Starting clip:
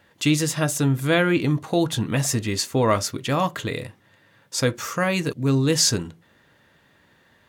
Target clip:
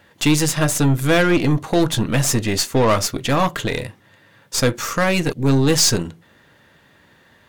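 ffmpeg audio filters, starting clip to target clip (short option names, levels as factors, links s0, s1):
-af "acontrast=76,aeval=exprs='0.668*(cos(1*acos(clip(val(0)/0.668,-1,1)))-cos(1*PI/2))+0.075*(cos(6*acos(clip(val(0)/0.668,-1,1)))-cos(6*PI/2))':c=same,asoftclip=type=tanh:threshold=0.631,volume=0.841"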